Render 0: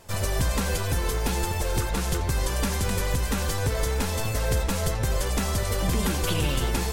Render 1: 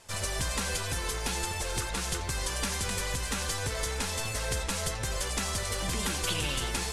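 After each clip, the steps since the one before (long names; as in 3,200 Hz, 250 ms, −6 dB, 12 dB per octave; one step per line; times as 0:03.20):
low-pass filter 11,000 Hz 24 dB per octave
tilt shelving filter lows −5 dB
level −4.5 dB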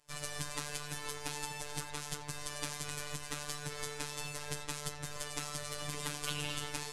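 phases set to zero 147 Hz
expander for the loud parts 1.5 to 1, over −52 dBFS
level −4.5 dB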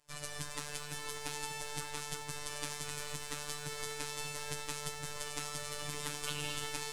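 feedback echo at a low word length 195 ms, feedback 80%, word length 8 bits, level −13.5 dB
level −2 dB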